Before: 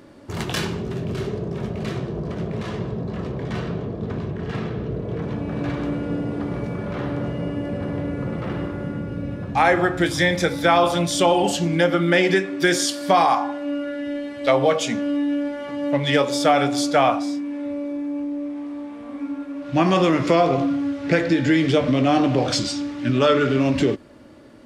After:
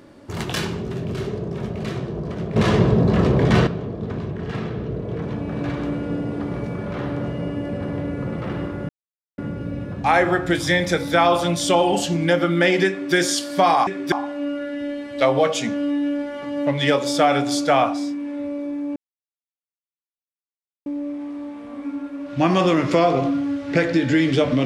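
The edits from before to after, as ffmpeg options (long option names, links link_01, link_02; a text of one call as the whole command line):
ffmpeg -i in.wav -filter_complex "[0:a]asplit=7[link_01][link_02][link_03][link_04][link_05][link_06][link_07];[link_01]atrim=end=2.562[link_08];[link_02]atrim=start=2.558:end=3.672,asetpts=PTS-STARTPTS,volume=11.5dB[link_09];[link_03]atrim=start=3.668:end=8.89,asetpts=PTS-STARTPTS,afade=type=out:start_time=5.218:duration=0.004:curve=hsin,apad=pad_dur=0.49[link_10];[link_04]atrim=start=8.89:end=13.382,asetpts=PTS-STARTPTS,afade=type=in:duration=0.004:curve=hsin[link_11];[link_05]atrim=start=12.398:end=12.652[link_12];[link_06]atrim=start=13.378:end=18.22,asetpts=PTS-STARTPTS,afade=type=out:start_time=4.838:duration=0.004:curve=hsin,apad=pad_dur=1.9[link_13];[link_07]atrim=start=18.22,asetpts=PTS-STARTPTS,afade=type=in:duration=0.004:curve=hsin[link_14];[link_08][link_09]acrossfade=duration=0.004:curve1=hsin:curve2=hsin[link_15];[link_10][link_11]concat=n=2:v=0:a=1[link_16];[link_15][link_16]acrossfade=duration=0.004:curve1=hsin:curve2=hsin[link_17];[link_17][link_12]acrossfade=duration=0.004:curve1=hsin:curve2=hsin[link_18];[link_13][link_14]concat=n=2:v=0:a=1[link_19];[link_18][link_19]acrossfade=duration=0.004:curve1=hsin:curve2=hsin" out.wav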